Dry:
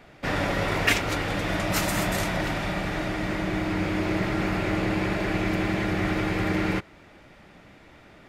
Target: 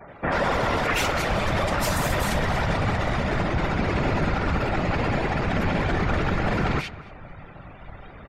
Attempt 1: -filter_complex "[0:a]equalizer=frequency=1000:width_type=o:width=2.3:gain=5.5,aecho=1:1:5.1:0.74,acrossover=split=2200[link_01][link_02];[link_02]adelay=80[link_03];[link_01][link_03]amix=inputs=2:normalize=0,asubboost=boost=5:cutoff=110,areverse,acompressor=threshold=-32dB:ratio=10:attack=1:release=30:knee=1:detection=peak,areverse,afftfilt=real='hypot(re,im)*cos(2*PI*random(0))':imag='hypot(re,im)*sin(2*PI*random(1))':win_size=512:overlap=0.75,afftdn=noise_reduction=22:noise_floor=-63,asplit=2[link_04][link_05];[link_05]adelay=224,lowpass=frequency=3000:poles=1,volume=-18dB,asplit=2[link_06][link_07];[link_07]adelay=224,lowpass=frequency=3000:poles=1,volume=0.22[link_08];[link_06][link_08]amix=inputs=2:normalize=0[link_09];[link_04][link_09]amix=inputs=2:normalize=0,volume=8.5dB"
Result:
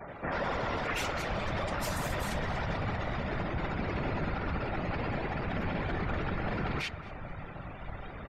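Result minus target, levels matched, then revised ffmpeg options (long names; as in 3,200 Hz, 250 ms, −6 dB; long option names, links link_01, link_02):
downward compressor: peak gain reduction +9.5 dB
-filter_complex "[0:a]equalizer=frequency=1000:width_type=o:width=2.3:gain=5.5,aecho=1:1:5.1:0.74,acrossover=split=2200[link_01][link_02];[link_02]adelay=80[link_03];[link_01][link_03]amix=inputs=2:normalize=0,asubboost=boost=5:cutoff=110,areverse,acompressor=threshold=-21.5dB:ratio=10:attack=1:release=30:knee=1:detection=peak,areverse,afftfilt=real='hypot(re,im)*cos(2*PI*random(0))':imag='hypot(re,im)*sin(2*PI*random(1))':win_size=512:overlap=0.75,afftdn=noise_reduction=22:noise_floor=-63,asplit=2[link_04][link_05];[link_05]adelay=224,lowpass=frequency=3000:poles=1,volume=-18dB,asplit=2[link_06][link_07];[link_07]adelay=224,lowpass=frequency=3000:poles=1,volume=0.22[link_08];[link_06][link_08]amix=inputs=2:normalize=0[link_09];[link_04][link_09]amix=inputs=2:normalize=0,volume=8.5dB"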